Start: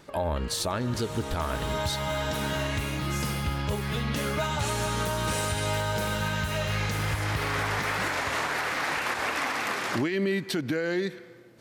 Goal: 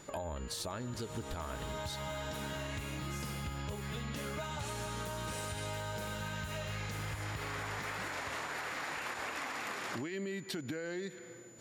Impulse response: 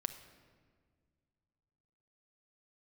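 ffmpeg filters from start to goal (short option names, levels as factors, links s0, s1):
-af "acompressor=threshold=0.0141:ratio=4,aeval=exprs='val(0)+0.00158*sin(2*PI*7000*n/s)':c=same,volume=0.841"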